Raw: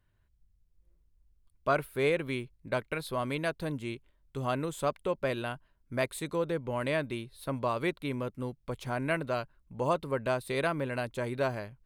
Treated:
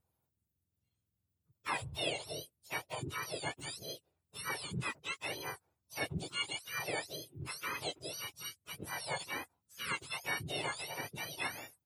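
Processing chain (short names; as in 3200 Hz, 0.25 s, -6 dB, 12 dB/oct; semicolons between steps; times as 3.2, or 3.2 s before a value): spectrum mirrored in octaves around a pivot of 1200 Hz; harmoniser -5 st -9 dB, -4 st -3 dB; gain -6.5 dB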